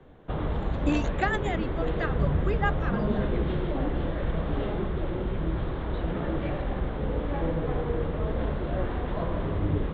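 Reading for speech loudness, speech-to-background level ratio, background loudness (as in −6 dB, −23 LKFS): −32.5 LKFS, −2.5 dB, −30.0 LKFS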